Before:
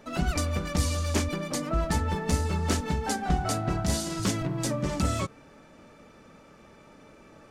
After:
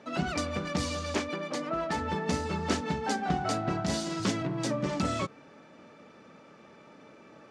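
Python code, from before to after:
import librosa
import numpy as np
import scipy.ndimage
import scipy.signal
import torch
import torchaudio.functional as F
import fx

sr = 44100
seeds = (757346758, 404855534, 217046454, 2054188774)

y = fx.bandpass_edges(x, sr, low_hz=150.0, high_hz=5500.0)
y = fx.bass_treble(y, sr, bass_db=-8, treble_db=-4, at=(1.15, 1.98))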